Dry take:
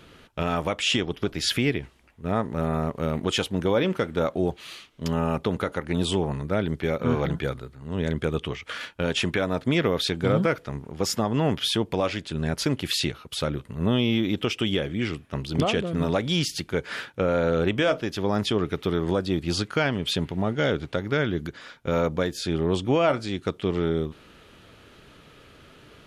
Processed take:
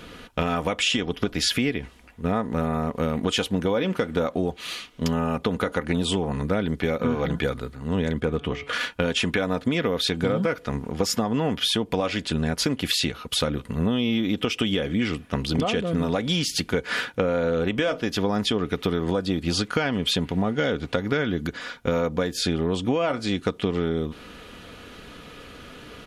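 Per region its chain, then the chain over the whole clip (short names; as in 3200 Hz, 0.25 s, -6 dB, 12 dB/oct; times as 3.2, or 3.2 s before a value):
8.2–8.73 high shelf 2100 Hz -9 dB + de-hum 142.6 Hz, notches 39 + hard clip -15.5 dBFS
whole clip: comb 4.1 ms, depth 37%; compressor, threshold -28 dBFS; gain +7.5 dB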